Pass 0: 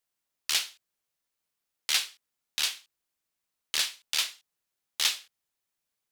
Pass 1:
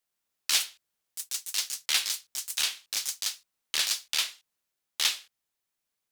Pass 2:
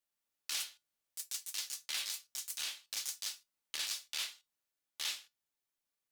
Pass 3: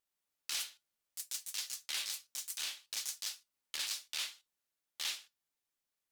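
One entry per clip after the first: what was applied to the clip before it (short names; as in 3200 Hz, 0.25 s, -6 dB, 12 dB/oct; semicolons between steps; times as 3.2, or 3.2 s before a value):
echoes that change speed 0.126 s, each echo +5 st, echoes 3; notches 50/100/150 Hz
limiter -19.5 dBFS, peak gain reduction 9.5 dB; resonator 290 Hz, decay 0.18 s, harmonics all, mix 60%
vibrato 15 Hz 63 cents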